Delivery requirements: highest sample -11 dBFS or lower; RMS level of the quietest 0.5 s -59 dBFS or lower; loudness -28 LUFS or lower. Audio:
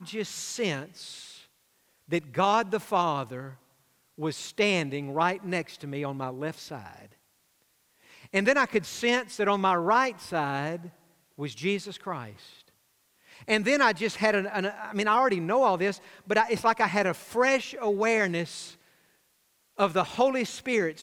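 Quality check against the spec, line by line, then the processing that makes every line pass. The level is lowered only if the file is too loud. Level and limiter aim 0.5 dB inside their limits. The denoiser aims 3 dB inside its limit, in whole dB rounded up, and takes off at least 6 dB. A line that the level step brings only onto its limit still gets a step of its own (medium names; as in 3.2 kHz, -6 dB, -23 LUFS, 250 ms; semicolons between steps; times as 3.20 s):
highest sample -8.5 dBFS: fail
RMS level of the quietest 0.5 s -69 dBFS: pass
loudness -27.0 LUFS: fail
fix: trim -1.5 dB; peak limiter -11.5 dBFS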